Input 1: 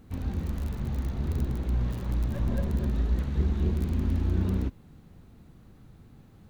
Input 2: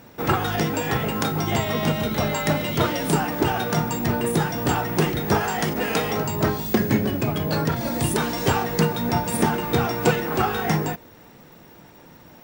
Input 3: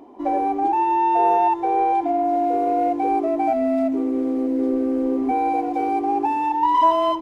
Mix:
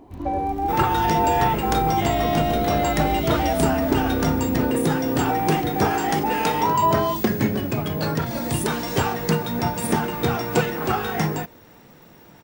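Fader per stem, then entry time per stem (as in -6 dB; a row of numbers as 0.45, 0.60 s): -3.5, -1.0, -3.5 dB; 0.00, 0.50, 0.00 s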